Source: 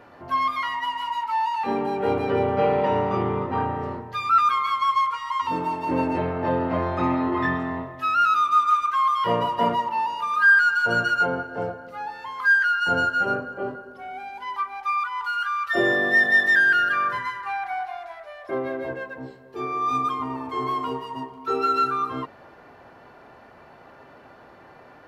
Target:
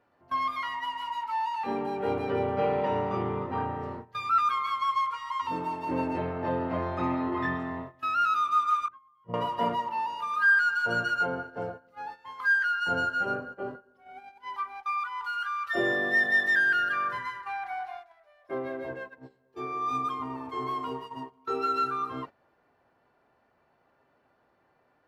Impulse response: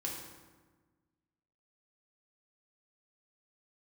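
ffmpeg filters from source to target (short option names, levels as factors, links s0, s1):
-filter_complex "[0:a]asettb=1/sr,asplit=3[s0][s1][s2];[s0]atrim=end=8.884[s3];[s1]atrim=start=8.88:end=9.34,asetpts=PTS-STARTPTS,afade=t=in:d=0.004:c=qsin,afade=t=out:st=0.456:d=0.004:c=qsin,bandpass=f=130:t=q:w=1.3:csg=0[s4];[s2]atrim=start=9.336[s5];[s3][s4]acrossfade=d=0.004:c1=hsin:c2=qsin[s6];[s6][s5]acrossfade=d=0.004:c1=qsin:c2=hsin,agate=range=0.2:threshold=0.02:ratio=16:detection=peak,volume=0.501"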